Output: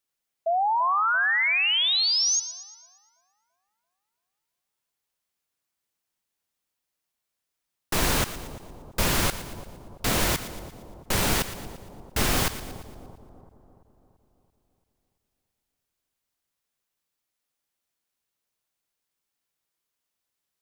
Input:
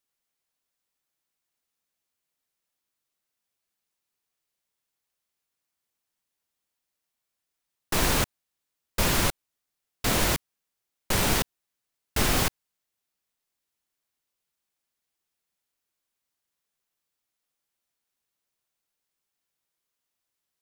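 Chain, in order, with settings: painted sound rise, 0.46–2.4, 650–6700 Hz -23 dBFS; split-band echo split 940 Hz, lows 0.337 s, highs 0.116 s, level -13 dB

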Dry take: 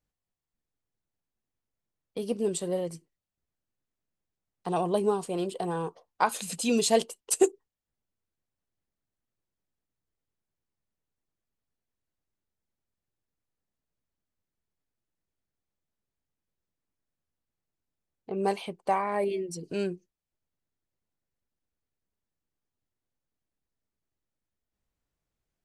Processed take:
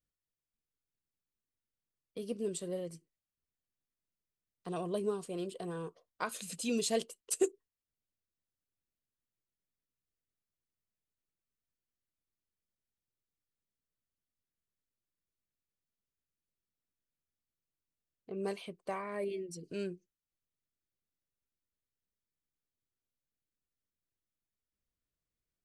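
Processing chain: bell 840 Hz -13.5 dB 0.35 oct; gain -7.5 dB

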